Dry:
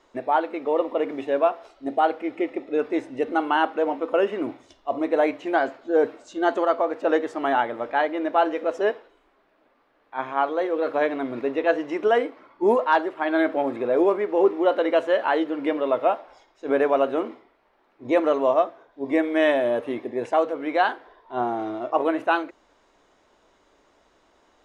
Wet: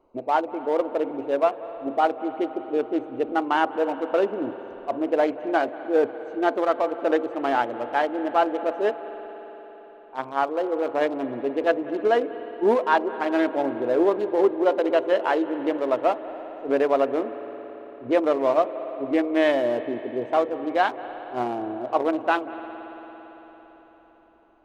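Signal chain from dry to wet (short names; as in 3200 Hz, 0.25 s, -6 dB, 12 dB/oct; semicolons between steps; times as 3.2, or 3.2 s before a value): Wiener smoothing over 25 samples; on a send: reverb RT60 4.5 s, pre-delay 0.184 s, DRR 12 dB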